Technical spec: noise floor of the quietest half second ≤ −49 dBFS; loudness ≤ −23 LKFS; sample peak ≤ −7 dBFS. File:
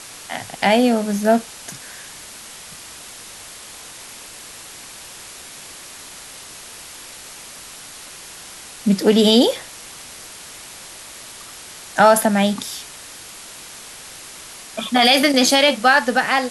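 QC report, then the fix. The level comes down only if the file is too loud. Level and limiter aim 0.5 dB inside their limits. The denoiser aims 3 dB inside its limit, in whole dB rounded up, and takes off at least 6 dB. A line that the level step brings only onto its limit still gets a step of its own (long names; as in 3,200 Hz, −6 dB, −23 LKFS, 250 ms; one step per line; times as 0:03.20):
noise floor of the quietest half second −38 dBFS: out of spec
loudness −16.5 LKFS: out of spec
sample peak −2.5 dBFS: out of spec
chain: broadband denoise 7 dB, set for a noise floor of −38 dBFS
level −7 dB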